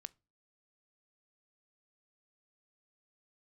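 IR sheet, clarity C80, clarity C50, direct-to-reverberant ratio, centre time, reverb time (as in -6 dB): 35.0 dB, 27.5 dB, 18.0 dB, 1 ms, 0.35 s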